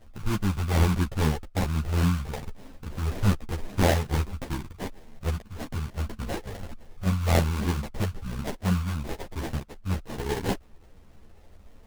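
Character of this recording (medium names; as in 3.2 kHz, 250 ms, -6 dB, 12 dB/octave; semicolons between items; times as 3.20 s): phasing stages 8, 1.2 Hz, lowest notch 300–2200 Hz; aliases and images of a low sample rate 1.3 kHz, jitter 20%; a shimmering, thickened sound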